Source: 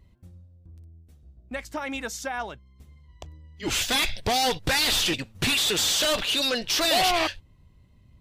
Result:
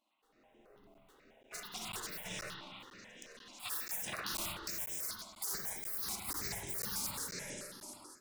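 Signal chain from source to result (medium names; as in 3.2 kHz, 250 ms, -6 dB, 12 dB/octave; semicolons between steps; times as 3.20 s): median filter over 9 samples; peaking EQ 3 kHz +6 dB 0.69 oct; repeats whose band climbs or falls 361 ms, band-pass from 1.1 kHz, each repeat 0.7 oct, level -6 dB; spectral gate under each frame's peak -30 dB weak; compression 6:1, threshold -46 dBFS, peak gain reduction 12 dB; spectral replace 2.88–3.42 s, 730–3900 Hz; spring tank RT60 1.6 s, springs 45/55 ms, chirp 40 ms, DRR -2.5 dB; level rider gain up to 15.5 dB; peaking EQ 270 Hz +3 dB 1.7 oct; band-stop 3.1 kHz, Q 28; crackling interface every 0.49 s, samples 512, zero, from 0.94 s; stepped phaser 9.2 Hz 470–4400 Hz; trim -4 dB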